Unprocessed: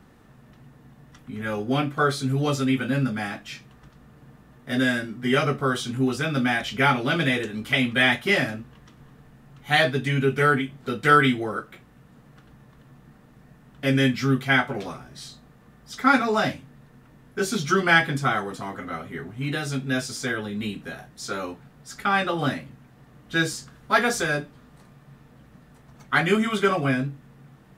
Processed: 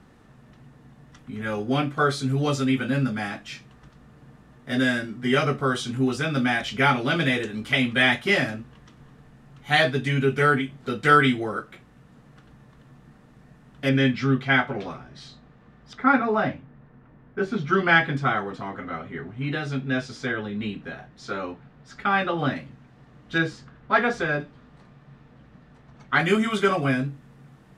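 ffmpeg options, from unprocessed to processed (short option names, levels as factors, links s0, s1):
-af "asetnsamples=n=441:p=0,asendcmd='13.89 lowpass f 4000;15.93 lowpass f 1900;17.73 lowpass f 3400;22.56 lowpass f 5800;23.38 lowpass f 2700;24.4 lowpass f 4500;26.2 lowpass f 11000',lowpass=9600"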